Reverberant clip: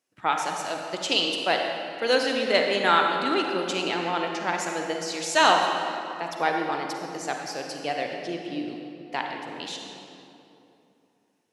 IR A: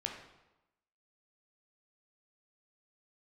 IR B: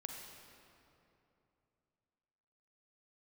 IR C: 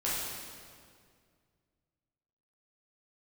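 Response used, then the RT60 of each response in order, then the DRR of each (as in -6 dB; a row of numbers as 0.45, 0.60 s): B; 1.0, 2.9, 2.1 s; 1.0, 1.5, -9.0 dB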